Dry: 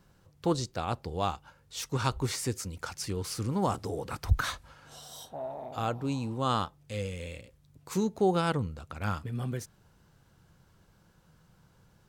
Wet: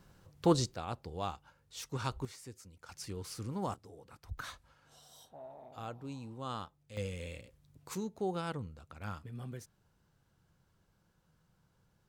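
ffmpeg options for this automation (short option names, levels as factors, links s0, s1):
-af "asetnsamples=n=441:p=0,asendcmd='0.75 volume volume -7.5dB;2.25 volume volume -17.5dB;2.89 volume volume -8.5dB;3.74 volume volume -19dB;4.38 volume volume -12dB;6.97 volume volume -3.5dB;7.95 volume volume -10dB',volume=1.12"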